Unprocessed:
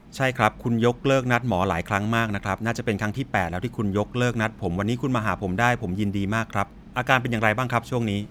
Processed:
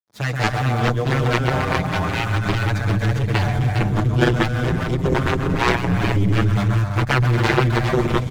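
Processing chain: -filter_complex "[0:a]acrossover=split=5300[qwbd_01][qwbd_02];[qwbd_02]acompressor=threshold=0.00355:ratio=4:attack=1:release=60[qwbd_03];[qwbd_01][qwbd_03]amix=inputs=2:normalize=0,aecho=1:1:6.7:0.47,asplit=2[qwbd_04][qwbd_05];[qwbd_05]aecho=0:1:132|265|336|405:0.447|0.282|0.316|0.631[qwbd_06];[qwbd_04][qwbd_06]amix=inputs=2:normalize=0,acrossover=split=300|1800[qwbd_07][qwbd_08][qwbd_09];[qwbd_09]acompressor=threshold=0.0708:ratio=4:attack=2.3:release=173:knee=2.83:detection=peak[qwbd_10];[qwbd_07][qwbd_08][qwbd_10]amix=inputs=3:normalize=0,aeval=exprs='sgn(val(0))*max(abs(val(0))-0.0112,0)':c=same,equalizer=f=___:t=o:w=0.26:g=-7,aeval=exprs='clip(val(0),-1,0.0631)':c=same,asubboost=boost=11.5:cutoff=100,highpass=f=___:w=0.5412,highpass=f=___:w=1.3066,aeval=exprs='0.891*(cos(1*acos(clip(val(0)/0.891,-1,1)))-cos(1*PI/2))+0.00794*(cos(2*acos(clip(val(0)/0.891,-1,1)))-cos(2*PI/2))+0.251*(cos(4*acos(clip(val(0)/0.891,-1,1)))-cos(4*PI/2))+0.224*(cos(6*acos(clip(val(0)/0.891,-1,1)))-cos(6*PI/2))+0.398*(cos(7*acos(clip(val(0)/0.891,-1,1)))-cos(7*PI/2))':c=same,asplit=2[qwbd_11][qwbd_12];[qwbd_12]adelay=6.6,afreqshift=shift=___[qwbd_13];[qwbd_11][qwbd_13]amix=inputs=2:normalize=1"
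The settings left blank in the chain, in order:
2.8k, 62, 62, 0.3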